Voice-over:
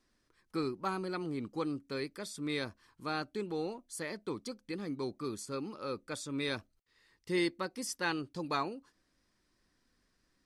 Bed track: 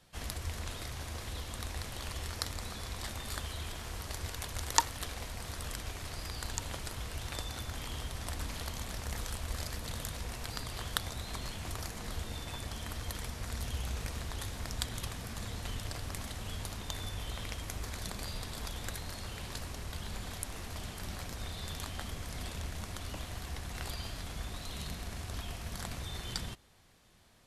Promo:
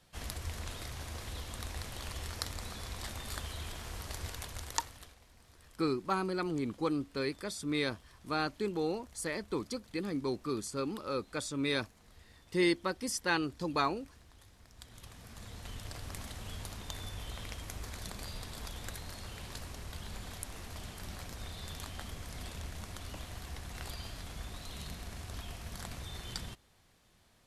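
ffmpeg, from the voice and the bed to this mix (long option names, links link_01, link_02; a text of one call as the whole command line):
ffmpeg -i stem1.wav -i stem2.wav -filter_complex "[0:a]adelay=5250,volume=3dB[link_01];[1:a]volume=15.5dB,afade=type=out:start_time=4.27:duration=0.91:silence=0.11885,afade=type=in:start_time=14.72:duration=1.43:silence=0.141254[link_02];[link_01][link_02]amix=inputs=2:normalize=0" out.wav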